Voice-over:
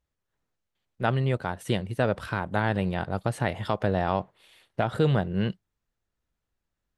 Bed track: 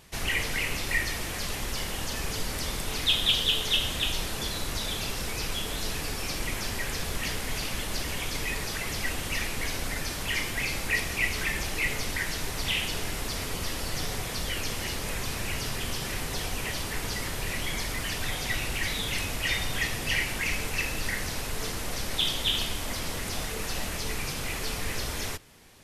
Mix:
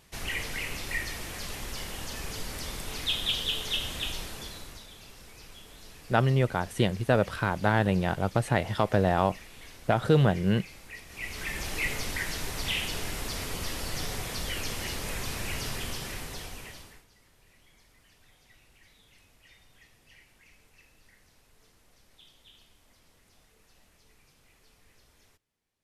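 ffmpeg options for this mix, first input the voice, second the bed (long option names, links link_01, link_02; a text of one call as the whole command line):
ffmpeg -i stem1.wav -i stem2.wav -filter_complex "[0:a]adelay=5100,volume=1.5dB[link_01];[1:a]volume=10.5dB,afade=type=out:start_time=4.08:duration=0.79:silence=0.237137,afade=type=in:start_time=11.07:duration=0.68:silence=0.16788,afade=type=out:start_time=15.72:duration=1.33:silence=0.0398107[link_02];[link_01][link_02]amix=inputs=2:normalize=0" out.wav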